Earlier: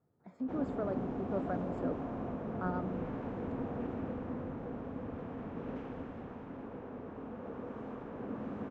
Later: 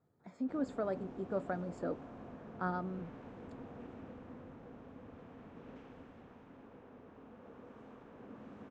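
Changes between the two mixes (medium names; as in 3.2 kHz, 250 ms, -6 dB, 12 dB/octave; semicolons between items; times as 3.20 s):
background -11.5 dB; master: add treble shelf 2.4 kHz +11 dB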